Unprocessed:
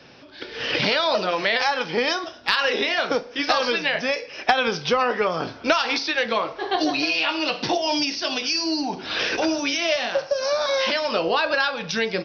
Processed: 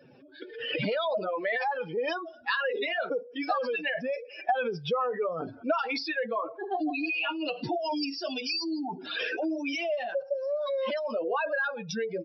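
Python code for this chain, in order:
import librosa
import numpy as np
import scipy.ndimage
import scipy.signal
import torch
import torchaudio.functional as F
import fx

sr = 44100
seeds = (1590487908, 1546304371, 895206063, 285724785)

y = fx.spec_expand(x, sr, power=2.6)
y = y * 10.0 ** (-7.0 / 20.0)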